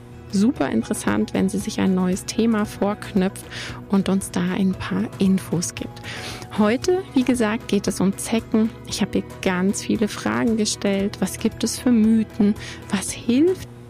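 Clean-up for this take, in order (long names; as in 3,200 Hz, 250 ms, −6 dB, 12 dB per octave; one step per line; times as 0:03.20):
clipped peaks rebuilt −10.5 dBFS
hum removal 119.8 Hz, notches 4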